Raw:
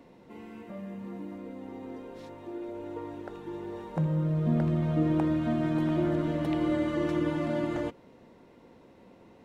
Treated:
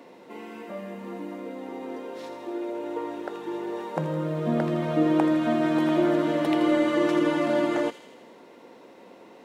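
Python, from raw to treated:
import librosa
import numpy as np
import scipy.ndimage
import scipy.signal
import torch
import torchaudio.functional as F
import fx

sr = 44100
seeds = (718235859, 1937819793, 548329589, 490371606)

p1 = scipy.signal.sosfilt(scipy.signal.butter(2, 320.0, 'highpass', fs=sr, output='sos'), x)
p2 = p1 + fx.echo_wet_highpass(p1, sr, ms=81, feedback_pct=64, hz=3300.0, wet_db=-7.0, dry=0)
y = p2 * 10.0 ** (8.5 / 20.0)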